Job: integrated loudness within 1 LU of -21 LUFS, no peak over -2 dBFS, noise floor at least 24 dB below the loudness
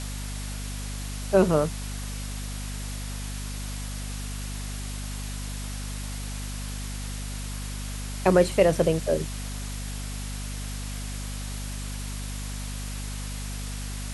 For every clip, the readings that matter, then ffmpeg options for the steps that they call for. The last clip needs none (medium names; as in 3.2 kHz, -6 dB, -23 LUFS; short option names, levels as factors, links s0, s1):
hum 50 Hz; highest harmonic 250 Hz; hum level -31 dBFS; noise floor -34 dBFS; noise floor target -54 dBFS; loudness -30.0 LUFS; peak level -5.5 dBFS; loudness target -21.0 LUFS
-> -af "bandreject=f=50:t=h:w=4,bandreject=f=100:t=h:w=4,bandreject=f=150:t=h:w=4,bandreject=f=200:t=h:w=4,bandreject=f=250:t=h:w=4"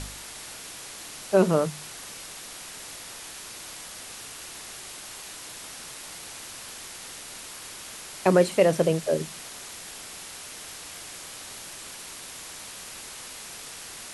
hum not found; noise floor -42 dBFS; noise floor target -55 dBFS
-> -af "afftdn=nr=13:nf=-42"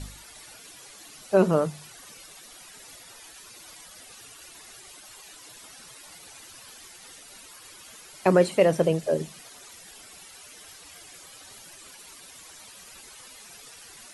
noise floor -48 dBFS; loudness -23.5 LUFS; peak level -6.0 dBFS; loudness target -21.0 LUFS
-> -af "volume=1.33"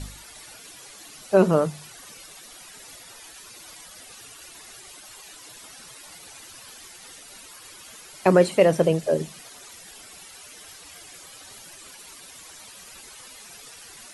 loudness -21.0 LUFS; peak level -3.5 dBFS; noise floor -46 dBFS